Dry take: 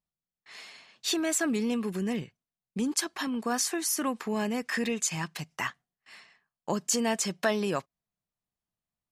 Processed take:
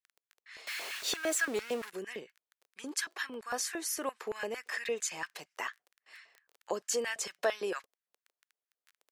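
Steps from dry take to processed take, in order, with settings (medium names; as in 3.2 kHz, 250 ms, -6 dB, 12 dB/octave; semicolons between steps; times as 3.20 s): 0.67–1.90 s: jump at every zero crossing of -30 dBFS; crackle 15 per s -38 dBFS; LFO high-pass square 4.4 Hz 460–1600 Hz; trim -6.5 dB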